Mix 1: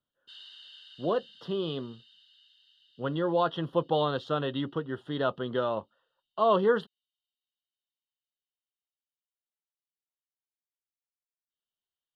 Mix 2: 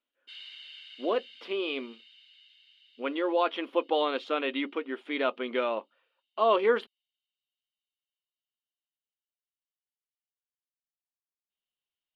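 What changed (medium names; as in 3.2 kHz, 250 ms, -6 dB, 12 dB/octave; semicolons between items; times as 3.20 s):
speech: add brick-wall FIR high-pass 220 Hz; master: remove Butterworth band-stop 2.3 kHz, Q 1.8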